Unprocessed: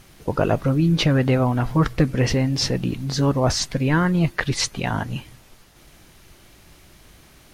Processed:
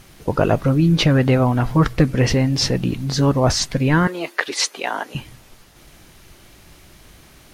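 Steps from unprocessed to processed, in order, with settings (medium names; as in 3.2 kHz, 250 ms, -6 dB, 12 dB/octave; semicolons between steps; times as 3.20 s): 4.07–5.15 s: high-pass 350 Hz 24 dB/octave; trim +3 dB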